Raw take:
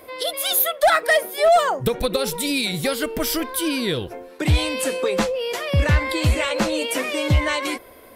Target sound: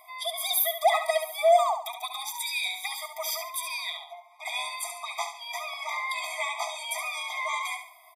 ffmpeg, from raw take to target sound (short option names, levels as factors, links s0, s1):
-filter_complex "[0:a]asettb=1/sr,asplit=3[s0][s1][s2];[s0]atrim=end=3.904[s3];[s1]atrim=start=3.9:end=4.45,asetpts=PTS-STARTPTS,afade=t=in:d=0.004:c=qsin,afade=t=out:st=0.546:d=0.004:c=qsin,highshelf=f=4000:g=-8.5[s4];[s2]atrim=start=4.446[s5];[s3][s4]acrossfade=d=0.004:c1=hsin:c2=qsin[s6];[s6][s5]acrossfade=d=0.004:c1=qsin:c2=hsin,aecho=1:1:70|140|210|280:0.398|0.135|0.046|0.0156,afftfilt=real='re*eq(mod(floor(b*sr/1024/640),2),1)':imag='im*eq(mod(floor(b*sr/1024/640),2),1)':win_size=1024:overlap=0.75,volume=0.631"